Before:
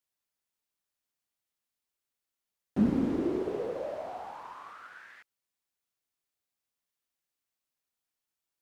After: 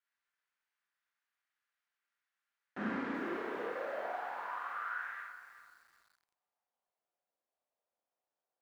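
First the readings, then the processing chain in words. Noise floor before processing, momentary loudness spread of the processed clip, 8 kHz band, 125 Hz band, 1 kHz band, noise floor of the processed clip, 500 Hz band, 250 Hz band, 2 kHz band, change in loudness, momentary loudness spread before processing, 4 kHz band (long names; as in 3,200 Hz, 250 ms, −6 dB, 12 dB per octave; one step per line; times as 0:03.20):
below −85 dBFS, 13 LU, can't be measured, −15.5 dB, +2.5 dB, below −85 dBFS, −6.5 dB, −12.0 dB, +9.5 dB, −8.0 dB, 20 LU, −1.0 dB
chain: four-comb reverb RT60 0.53 s, combs from 32 ms, DRR −1.5 dB
band-pass filter sweep 1,600 Hz → 630 Hz, 0:04.78–0:07.23
feedback echo at a low word length 381 ms, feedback 35%, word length 11 bits, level −12 dB
level +7 dB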